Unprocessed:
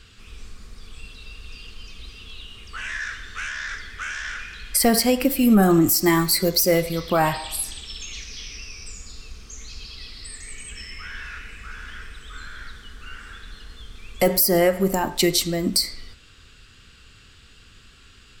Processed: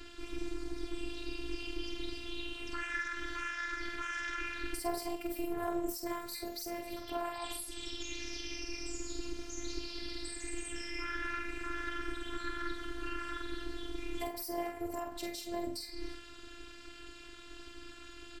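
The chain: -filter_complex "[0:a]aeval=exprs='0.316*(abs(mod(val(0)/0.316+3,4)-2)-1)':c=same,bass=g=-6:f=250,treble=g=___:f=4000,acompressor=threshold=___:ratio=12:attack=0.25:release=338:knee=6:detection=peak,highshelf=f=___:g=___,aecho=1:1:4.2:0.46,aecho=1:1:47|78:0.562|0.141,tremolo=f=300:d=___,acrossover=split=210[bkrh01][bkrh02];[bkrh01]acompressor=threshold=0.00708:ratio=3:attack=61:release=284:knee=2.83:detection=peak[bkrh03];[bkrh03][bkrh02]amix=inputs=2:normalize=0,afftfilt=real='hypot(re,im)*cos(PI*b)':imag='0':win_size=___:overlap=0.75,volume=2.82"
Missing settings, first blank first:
1, 0.0251, 2200, -8.5, 0.889, 512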